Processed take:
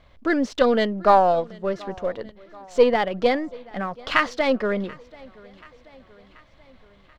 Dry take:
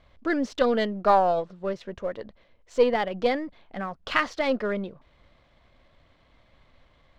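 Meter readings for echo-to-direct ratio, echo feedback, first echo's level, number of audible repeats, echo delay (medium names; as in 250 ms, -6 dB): -22.0 dB, 57%, -23.5 dB, 3, 733 ms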